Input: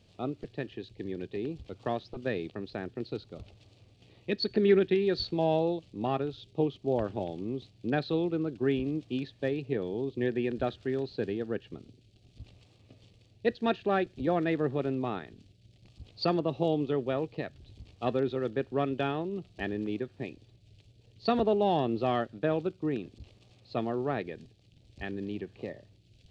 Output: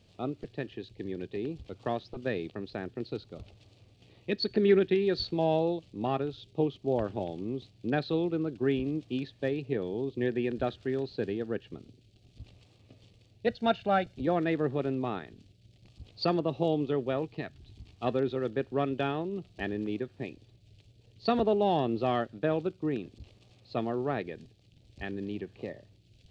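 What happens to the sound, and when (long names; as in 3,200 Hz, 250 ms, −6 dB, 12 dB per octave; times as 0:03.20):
0:13.47–0:14.15: comb filter 1.4 ms
0:17.22–0:18.04: parametric band 530 Hz −14.5 dB 0.22 octaves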